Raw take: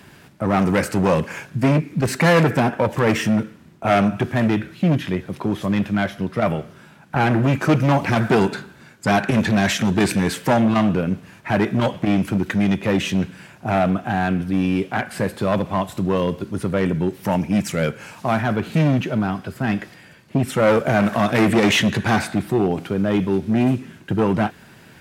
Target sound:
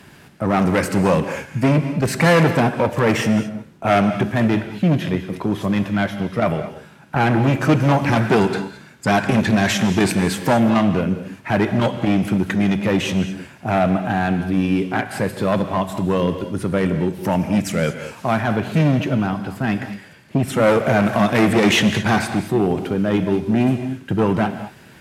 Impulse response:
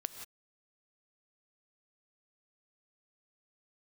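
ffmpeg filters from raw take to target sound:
-filter_complex "[1:a]atrim=start_sample=2205,atrim=end_sample=6174,asetrate=26901,aresample=44100[a];[0:a][a]afir=irnorm=-1:irlink=0"

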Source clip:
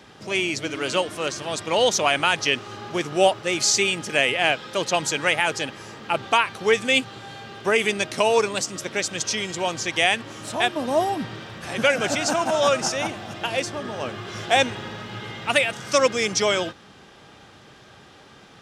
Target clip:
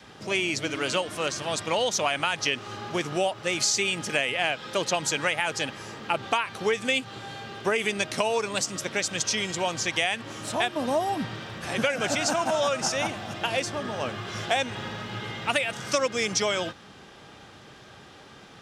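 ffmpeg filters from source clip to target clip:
-af "acompressor=threshold=-21dB:ratio=6,adynamicequalizer=threshold=0.00794:dfrequency=370:dqfactor=2.2:tfrequency=370:tqfactor=2.2:attack=5:release=100:ratio=0.375:range=2:mode=cutabove:tftype=bell"

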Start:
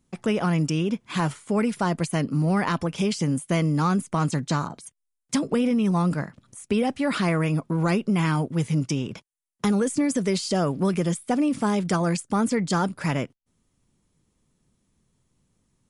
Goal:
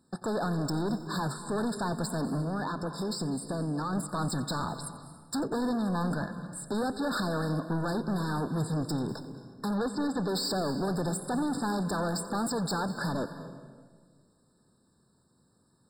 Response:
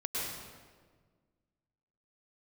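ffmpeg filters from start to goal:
-filter_complex "[0:a]highpass=f=230:p=1,alimiter=limit=-17dB:level=0:latency=1,asettb=1/sr,asplit=3[a][b][c];[a]atrim=end=2.404[d];[b]atrim=start=2.4:end=3.93,asetpts=PTS-STARTPTS,afade=t=in:d=0.004:c=qsin,afade=t=out:st=1.526:d=0.004:c=qsin,acompressor=threshold=-33dB:ratio=3[e];[c]atrim=start=3.926[f];[d][e]acrossfade=d=0.004:c1=hsin:c2=qsin[g];[g][f]acrossfade=d=0.004:c1=qsin:c2=hsin,asplit=3[h][i][j];[h]afade=t=out:st=9.73:d=0.02[k];[i]lowpass=f=2.9k:t=q:w=1.8,afade=t=in:st=9.73:d=0.02,afade=t=out:st=10.27:d=0.02[l];[j]afade=t=in:st=10.27:d=0.02[m];[k][l][m]amix=inputs=3:normalize=0,asoftclip=type=tanh:threshold=-34dB,asplit=2[n][o];[1:a]atrim=start_sample=2205,adelay=89[p];[o][p]afir=irnorm=-1:irlink=0,volume=-15.5dB[q];[n][q]amix=inputs=2:normalize=0,afftfilt=real='re*eq(mod(floor(b*sr/1024/1800),2),0)':imag='im*eq(mod(floor(b*sr/1024/1800),2),0)':win_size=1024:overlap=0.75,volume=6dB"

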